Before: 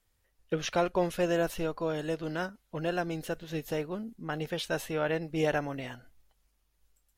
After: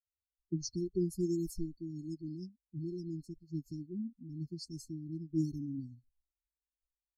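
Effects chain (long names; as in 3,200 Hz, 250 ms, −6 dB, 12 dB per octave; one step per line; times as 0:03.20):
spectral dynamics exaggerated over time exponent 2
low-pass that shuts in the quiet parts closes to 2,900 Hz, open at −27 dBFS
linear-phase brick-wall band-stop 390–4,200 Hz
level +2.5 dB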